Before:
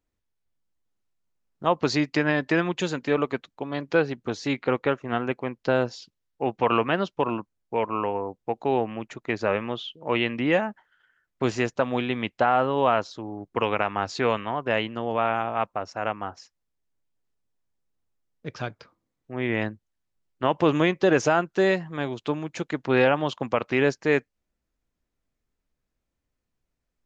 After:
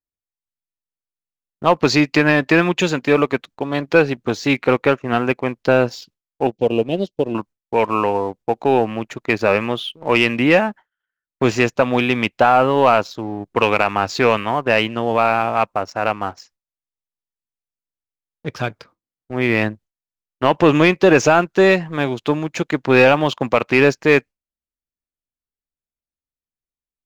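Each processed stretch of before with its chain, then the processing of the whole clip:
0:06.47–0:07.35: Chebyshev band-stop filter 520–3,800 Hz + expander for the loud parts, over −37 dBFS
whole clip: noise gate with hold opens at −43 dBFS; dynamic equaliser 2,500 Hz, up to +6 dB, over −46 dBFS, Q 5.2; leveller curve on the samples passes 1; level +5 dB

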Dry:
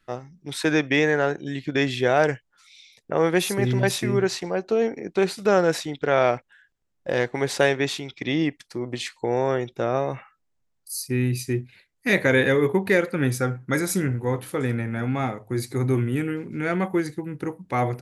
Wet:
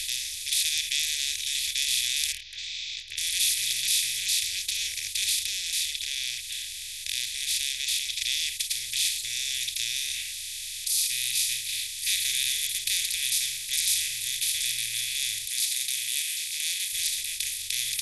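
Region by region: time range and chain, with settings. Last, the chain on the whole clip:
0:02.32–0:03.18: Gaussian smoothing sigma 3.5 samples + output level in coarse steps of 17 dB + double-tracking delay 22 ms −14 dB
0:05.39–0:08.21: low-pass filter 2,500 Hz 6 dB per octave + downward compressor 1.5 to 1, threshold −41 dBFS
0:15.45–0:16.93: high-pass filter 1,200 Hz + parametric band 2,600 Hz −4 dB 2.9 octaves
whole clip: compressor on every frequency bin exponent 0.2; inverse Chebyshev band-stop filter 140–1,300 Hz, stop band 50 dB; dynamic equaliser 1,100 Hz, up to −7 dB, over −47 dBFS, Q 0.79

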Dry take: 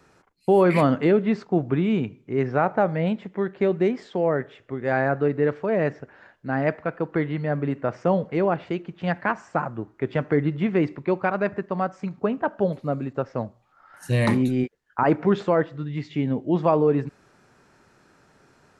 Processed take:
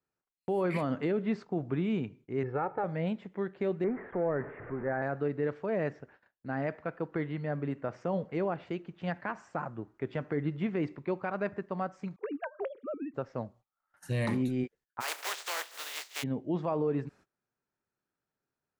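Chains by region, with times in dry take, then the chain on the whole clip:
0:02.43–0:02.84: high-frequency loss of the air 390 metres + comb filter 2.3 ms, depth 72%
0:03.84–0:05.02: converter with a step at zero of −30 dBFS + Butterworth low-pass 2,000 Hz 48 dB per octave
0:12.16–0:13.14: three sine waves on the formant tracks + downward compressor 5 to 1, threshold −23 dBFS
0:15.00–0:16.22: compressing power law on the bin magnitudes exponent 0.27 + Bessel high-pass filter 690 Hz, order 6 + downward compressor 2 to 1, threshold −25 dBFS
whole clip: noise gate −47 dBFS, range −24 dB; brickwall limiter −13 dBFS; level −8.5 dB

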